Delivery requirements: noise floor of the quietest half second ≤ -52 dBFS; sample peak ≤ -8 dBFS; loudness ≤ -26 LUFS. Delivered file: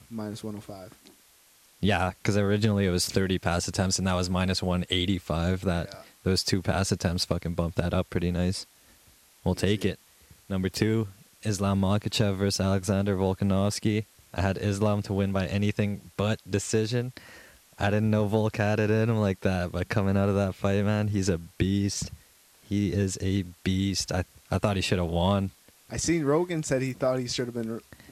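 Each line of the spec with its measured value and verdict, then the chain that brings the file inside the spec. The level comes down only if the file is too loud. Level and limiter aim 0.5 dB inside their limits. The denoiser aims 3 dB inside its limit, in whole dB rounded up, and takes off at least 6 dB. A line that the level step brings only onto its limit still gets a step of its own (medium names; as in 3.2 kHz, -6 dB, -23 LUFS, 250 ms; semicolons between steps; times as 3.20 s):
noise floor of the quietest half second -59 dBFS: pass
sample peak -10.0 dBFS: pass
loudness -27.5 LUFS: pass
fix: none needed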